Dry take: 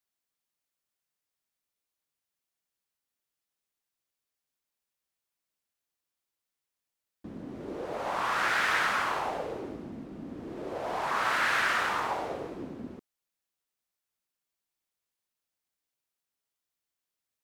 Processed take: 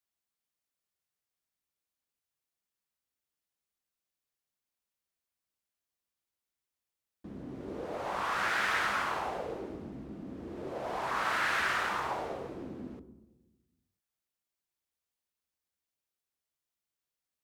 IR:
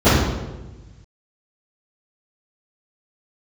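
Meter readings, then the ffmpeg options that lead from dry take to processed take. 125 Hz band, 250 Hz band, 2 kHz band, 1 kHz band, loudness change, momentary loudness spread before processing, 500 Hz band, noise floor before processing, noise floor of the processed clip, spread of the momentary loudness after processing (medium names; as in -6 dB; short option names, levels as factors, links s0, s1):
-0.5 dB, -2.0 dB, -3.5 dB, -3.0 dB, -3.5 dB, 17 LU, -2.5 dB, under -85 dBFS, under -85 dBFS, 16 LU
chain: -filter_complex "[0:a]asplit=2[s0][s1];[1:a]atrim=start_sample=2205,asetrate=43218,aresample=44100[s2];[s1][s2]afir=irnorm=-1:irlink=0,volume=0.01[s3];[s0][s3]amix=inputs=2:normalize=0,volume=0.668"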